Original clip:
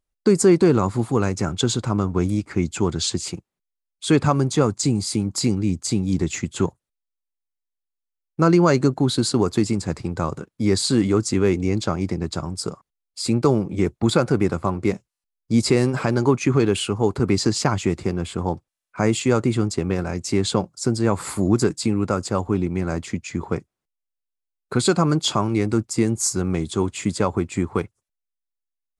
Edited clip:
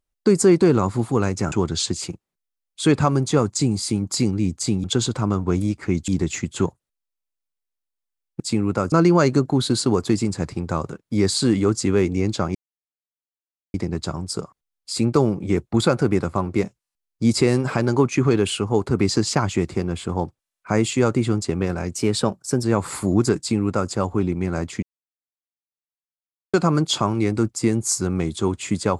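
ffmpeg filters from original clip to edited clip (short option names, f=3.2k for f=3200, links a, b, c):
-filter_complex "[0:a]asplit=11[a][b][c][d][e][f][g][h][i][j][k];[a]atrim=end=1.522[l];[b]atrim=start=2.758:end=6.082[m];[c]atrim=start=1.518:end=2.762[n];[d]atrim=start=6.078:end=8.402[o];[e]atrim=start=21.728:end=22.252[p];[f]atrim=start=8.398:end=12.03,asetpts=PTS-STARTPTS,afade=t=out:st=3.628:d=0.004:c=hsin,apad=pad_dur=1.19[q];[g]atrim=start=12.03:end=20.244,asetpts=PTS-STARTPTS,afade=t=in:d=0.004:c=hsin[r];[h]atrim=start=20.24:end=20.98,asetpts=PTS-STARTPTS,asetrate=47628,aresample=44100[s];[i]atrim=start=20.976:end=23.17,asetpts=PTS-STARTPTS,afade=t=out:st=2.19:d=0.004:c=hsin[t];[j]atrim=start=23.17:end=24.88,asetpts=PTS-STARTPTS,volume=0[u];[k]atrim=start=24.88,asetpts=PTS-STARTPTS,afade=t=in:d=0.004:c=hsin[v];[l][m]acrossfade=d=0.004:c1=hsin:c2=hsin[w];[w][n]acrossfade=d=0.004:c1=hsin:c2=hsin[x];[x][o]acrossfade=d=0.004:c1=hsin:c2=hsin[y];[y][p]acrossfade=d=0.004:c1=hsin:c2=hsin[z];[q][r]concat=n=2:v=0:a=1[aa];[z][aa]acrossfade=d=0.004:c1=hsin:c2=hsin[ab];[ab][s]acrossfade=d=0.004:c1=hsin:c2=hsin[ac];[t][u][v]concat=n=3:v=0:a=1[ad];[ac][ad]acrossfade=d=0.004:c1=hsin:c2=hsin"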